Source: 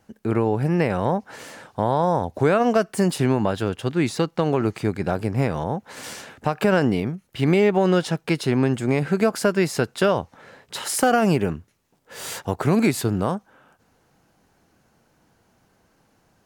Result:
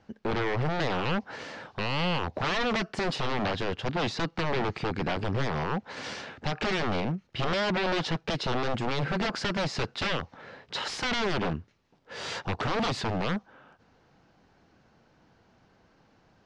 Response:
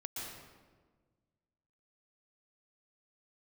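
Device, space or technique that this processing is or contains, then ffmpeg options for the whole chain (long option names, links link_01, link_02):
synthesiser wavefolder: -af "aeval=exprs='0.075*(abs(mod(val(0)/0.075+3,4)-2)-1)':channel_layout=same,lowpass=frequency=5200:width=0.5412,lowpass=frequency=5200:width=1.3066"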